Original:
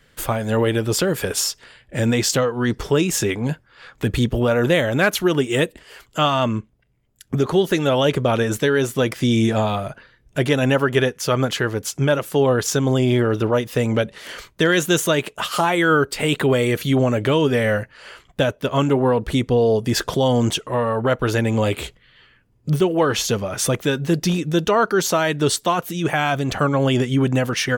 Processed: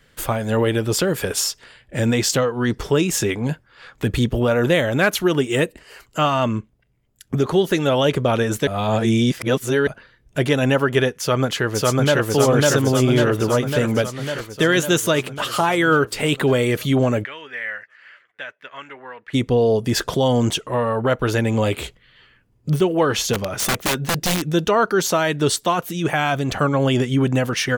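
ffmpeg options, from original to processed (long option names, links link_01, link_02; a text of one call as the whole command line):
ffmpeg -i in.wav -filter_complex "[0:a]asettb=1/sr,asplit=3[link_01][link_02][link_03];[link_01]atrim=end=5.564[link_04];[link_02]atrim=start=5.56:end=6.44,asetpts=PTS-STARTPTS,afade=type=in:duration=0.004:curve=qsin,afade=type=out:start_time=0.876:duration=0.004:curve=qsin,bandreject=frequency=3400:width=6.6[link_05];[link_03]atrim=start=6.436[link_06];[link_04][link_05]acrossfade=duration=0.004:curve1=hsin:curve2=qsin[link_07];[link_07][link_06]acrossfade=duration=0.004:curve1=qsin:curve2=hsin,asplit=2[link_08][link_09];[link_09]afade=type=in:start_time=11.16:duration=0.01,afade=type=out:start_time=12.26:duration=0.01,aecho=0:1:550|1100|1650|2200|2750|3300|3850|4400|4950|5500|6050|6600:1|0.7|0.49|0.343|0.2401|0.16807|0.117649|0.0823543|0.057648|0.0403536|0.0282475|0.0197733[link_10];[link_08][link_10]amix=inputs=2:normalize=0,asplit=3[link_11][link_12][link_13];[link_11]afade=type=out:start_time=17.23:duration=0.02[link_14];[link_12]bandpass=frequency=1900:width_type=q:width=3.5,afade=type=in:start_time=17.23:duration=0.02,afade=type=out:start_time=19.33:duration=0.02[link_15];[link_13]afade=type=in:start_time=19.33:duration=0.02[link_16];[link_14][link_15][link_16]amix=inputs=3:normalize=0,asplit=3[link_17][link_18][link_19];[link_17]afade=type=out:start_time=23.33:duration=0.02[link_20];[link_18]aeval=exprs='(mod(5.31*val(0)+1,2)-1)/5.31':channel_layout=same,afade=type=in:start_time=23.33:duration=0.02,afade=type=out:start_time=24.52:duration=0.02[link_21];[link_19]afade=type=in:start_time=24.52:duration=0.02[link_22];[link_20][link_21][link_22]amix=inputs=3:normalize=0,asplit=3[link_23][link_24][link_25];[link_23]atrim=end=8.672[link_26];[link_24]atrim=start=8.668:end=9.872,asetpts=PTS-STARTPTS,areverse[link_27];[link_25]atrim=start=9.868[link_28];[link_26][link_27]acrossfade=duration=0.004:curve1=hsin:curve2=hsin[link_29];[link_29][link_28]acrossfade=duration=0.004:curve1=hsin:curve2=hsin" out.wav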